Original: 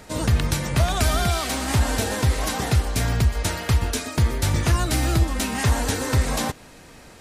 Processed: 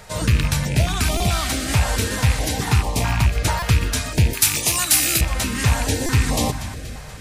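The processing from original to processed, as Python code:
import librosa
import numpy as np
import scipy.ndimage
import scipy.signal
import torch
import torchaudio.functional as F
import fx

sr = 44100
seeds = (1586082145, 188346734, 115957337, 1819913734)

y = fx.rattle_buzz(x, sr, strikes_db=-20.0, level_db=-18.0)
y = fx.peak_eq(y, sr, hz=920.0, db=10.0, octaves=0.73, at=(2.67, 3.61))
y = fx.echo_feedback(y, sr, ms=239, feedback_pct=53, wet_db=-16)
y = fx.room_shoebox(y, sr, seeds[0], volume_m3=1900.0, walls='mixed', distance_m=0.43)
y = fx.rider(y, sr, range_db=10, speed_s=0.5)
y = fx.riaa(y, sr, side='recording', at=(4.33, 5.21))
y = fx.buffer_glitch(y, sr, at_s=(1.17, 3.59, 6.06), block=128, repeats=10)
y = fx.filter_held_notch(y, sr, hz=4.6, low_hz=290.0, high_hz=1500.0)
y = y * 10.0 ** (2.5 / 20.0)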